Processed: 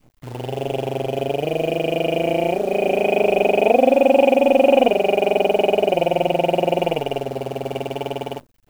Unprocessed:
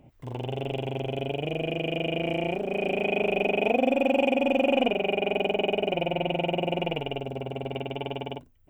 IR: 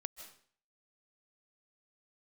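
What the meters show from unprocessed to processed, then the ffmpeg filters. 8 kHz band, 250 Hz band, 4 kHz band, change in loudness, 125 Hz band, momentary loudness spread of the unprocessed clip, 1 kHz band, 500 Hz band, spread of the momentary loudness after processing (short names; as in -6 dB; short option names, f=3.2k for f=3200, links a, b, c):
n/a, +5.5 dB, +3.5 dB, +8.5 dB, +4.0 dB, 10 LU, +10.0 dB, +10.0 dB, 13 LU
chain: -af "acrusher=bits=8:dc=4:mix=0:aa=0.000001,adynamicequalizer=threshold=0.0141:dfrequency=600:dqfactor=0.81:tfrequency=600:tqfactor=0.81:attack=5:release=100:ratio=0.375:range=4:mode=boostabove:tftype=bell,volume=3dB"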